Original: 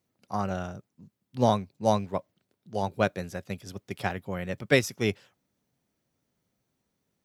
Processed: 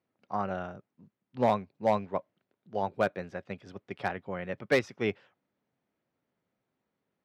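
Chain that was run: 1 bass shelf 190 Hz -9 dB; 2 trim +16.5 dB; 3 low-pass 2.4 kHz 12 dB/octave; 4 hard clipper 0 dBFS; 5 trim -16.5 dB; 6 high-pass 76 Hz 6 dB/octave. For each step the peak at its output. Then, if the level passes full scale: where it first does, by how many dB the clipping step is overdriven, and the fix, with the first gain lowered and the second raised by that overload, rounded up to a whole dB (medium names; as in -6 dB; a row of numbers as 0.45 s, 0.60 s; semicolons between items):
-7.5 dBFS, +9.0 dBFS, +8.0 dBFS, 0.0 dBFS, -16.5 dBFS, -15.0 dBFS; step 2, 8.0 dB; step 2 +8.5 dB, step 5 -8.5 dB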